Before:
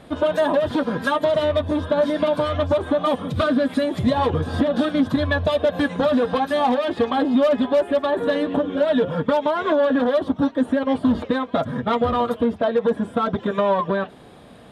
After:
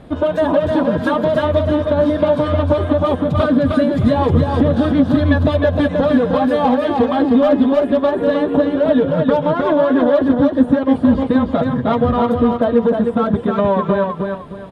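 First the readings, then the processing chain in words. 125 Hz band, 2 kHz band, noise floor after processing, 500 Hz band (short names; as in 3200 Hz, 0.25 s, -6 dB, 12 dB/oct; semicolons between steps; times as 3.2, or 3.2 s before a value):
+9.5 dB, +1.5 dB, -27 dBFS, +4.5 dB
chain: tilt -2 dB/oct; feedback echo 0.309 s, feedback 29%, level -4 dB; gain +1.5 dB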